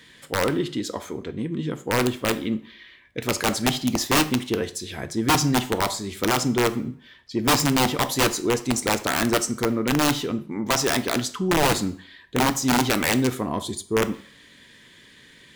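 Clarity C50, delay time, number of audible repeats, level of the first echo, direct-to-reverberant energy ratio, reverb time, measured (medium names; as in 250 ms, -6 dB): 16.5 dB, no echo, no echo, no echo, 11.0 dB, 0.55 s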